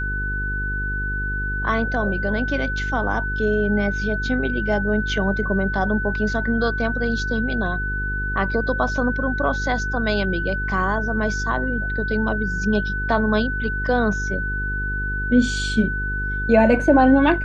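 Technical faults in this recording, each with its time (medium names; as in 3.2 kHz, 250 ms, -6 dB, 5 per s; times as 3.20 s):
buzz 50 Hz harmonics 9 -27 dBFS
whine 1.5 kHz -25 dBFS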